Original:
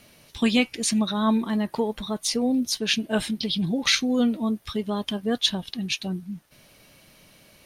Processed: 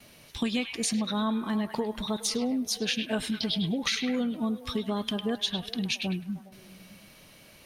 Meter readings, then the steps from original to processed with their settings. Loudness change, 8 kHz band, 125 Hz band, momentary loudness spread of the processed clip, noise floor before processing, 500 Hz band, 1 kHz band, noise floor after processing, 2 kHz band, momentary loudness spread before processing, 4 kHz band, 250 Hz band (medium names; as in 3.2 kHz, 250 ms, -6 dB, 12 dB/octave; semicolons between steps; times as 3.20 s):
-5.0 dB, -4.5 dB, -3.0 dB, 5 LU, -56 dBFS, -5.0 dB, -4.5 dB, -54 dBFS, -5.5 dB, 8 LU, -5.0 dB, -5.0 dB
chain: gate with hold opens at -47 dBFS; compression, threshold -26 dBFS, peak gain reduction 10 dB; on a send: repeats whose band climbs or falls 103 ms, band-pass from 2.7 kHz, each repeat -0.7 oct, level -5 dB